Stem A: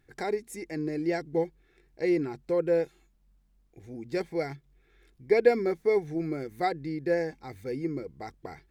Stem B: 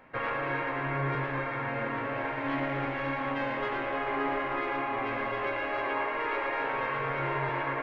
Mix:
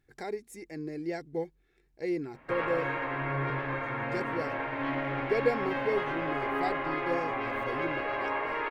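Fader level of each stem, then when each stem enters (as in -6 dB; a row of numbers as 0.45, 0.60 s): -6.0, -1.0 dB; 0.00, 2.35 s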